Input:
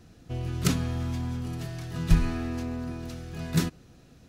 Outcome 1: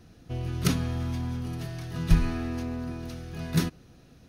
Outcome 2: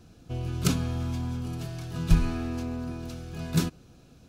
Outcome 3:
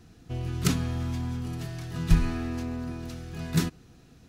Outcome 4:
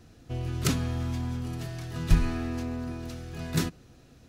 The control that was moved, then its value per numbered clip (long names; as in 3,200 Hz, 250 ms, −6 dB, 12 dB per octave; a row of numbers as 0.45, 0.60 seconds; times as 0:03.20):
notch filter, centre frequency: 7,500, 1,900, 570, 180 Hertz